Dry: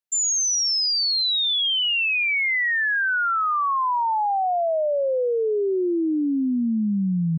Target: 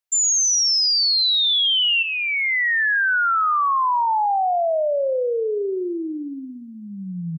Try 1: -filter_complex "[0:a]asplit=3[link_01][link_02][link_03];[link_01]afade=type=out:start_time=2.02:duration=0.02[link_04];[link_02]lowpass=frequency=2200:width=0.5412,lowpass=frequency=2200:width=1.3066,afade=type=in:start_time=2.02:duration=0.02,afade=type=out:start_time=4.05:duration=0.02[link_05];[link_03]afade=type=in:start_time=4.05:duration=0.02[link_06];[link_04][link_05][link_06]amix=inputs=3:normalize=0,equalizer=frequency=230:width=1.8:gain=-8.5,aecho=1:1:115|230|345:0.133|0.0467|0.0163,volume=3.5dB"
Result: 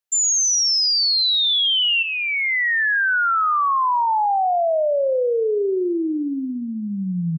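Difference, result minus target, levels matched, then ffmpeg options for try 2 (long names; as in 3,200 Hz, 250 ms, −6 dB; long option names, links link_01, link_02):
250 Hz band +6.0 dB
-filter_complex "[0:a]asplit=3[link_01][link_02][link_03];[link_01]afade=type=out:start_time=2.02:duration=0.02[link_04];[link_02]lowpass=frequency=2200:width=0.5412,lowpass=frequency=2200:width=1.3066,afade=type=in:start_time=2.02:duration=0.02,afade=type=out:start_time=4.05:duration=0.02[link_05];[link_03]afade=type=in:start_time=4.05:duration=0.02[link_06];[link_04][link_05][link_06]amix=inputs=3:normalize=0,equalizer=frequency=230:width=1.8:gain=-19.5,aecho=1:1:115|230|345:0.133|0.0467|0.0163,volume=3.5dB"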